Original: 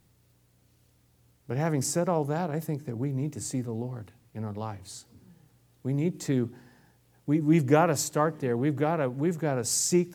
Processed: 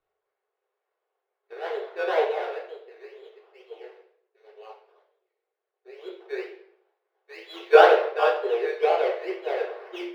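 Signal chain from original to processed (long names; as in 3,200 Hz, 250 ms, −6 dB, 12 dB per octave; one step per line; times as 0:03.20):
variable-slope delta modulation 32 kbit/s
high-shelf EQ 2,700 Hz −7 dB
upward compression, threshold −35 dBFS
sample-and-hold swept by an LFO 17×, swing 60% 2.1 Hz
0:03.88–0:06.00: auto-filter notch saw down 7.7 Hz 640–2,900 Hz
linear-phase brick-wall high-pass 360 Hz
high-frequency loss of the air 360 metres
convolution reverb RT60 1.1 s, pre-delay 3 ms, DRR −4 dB
multiband upward and downward expander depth 100%
level −2 dB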